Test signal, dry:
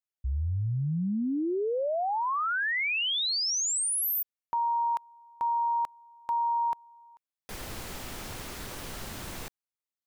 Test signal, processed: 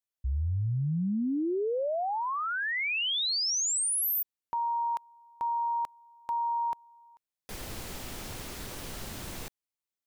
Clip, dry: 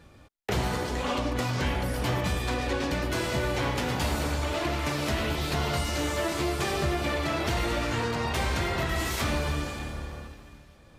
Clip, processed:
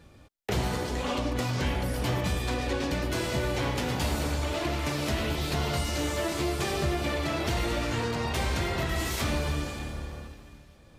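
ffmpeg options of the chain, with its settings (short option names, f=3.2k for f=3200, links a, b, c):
-af "equalizer=f=1.3k:t=o:w=1.8:g=-3"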